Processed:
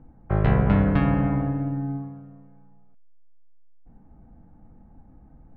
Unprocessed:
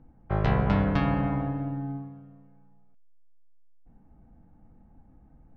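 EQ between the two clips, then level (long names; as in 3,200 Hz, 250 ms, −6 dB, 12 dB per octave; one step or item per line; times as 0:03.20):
low-pass filter 2,200 Hz 12 dB per octave
dynamic equaliser 910 Hz, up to −5 dB, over −44 dBFS, Q 1.1
+5.0 dB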